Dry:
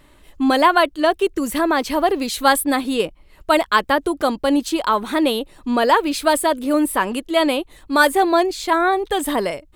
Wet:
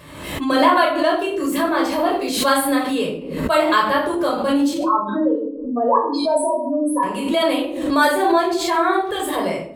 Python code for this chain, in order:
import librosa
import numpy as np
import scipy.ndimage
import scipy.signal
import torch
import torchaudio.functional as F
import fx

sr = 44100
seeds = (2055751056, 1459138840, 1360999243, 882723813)

y = fx.spec_expand(x, sr, power=3.9, at=(4.74, 7.03))
y = scipy.signal.sosfilt(scipy.signal.butter(2, 90.0, 'highpass', fs=sr, output='sos'), y)
y = fx.room_shoebox(y, sr, seeds[0], volume_m3=870.0, walls='furnished', distance_m=5.5)
y = fx.pre_swell(y, sr, db_per_s=53.0)
y = y * librosa.db_to_amplitude(-8.5)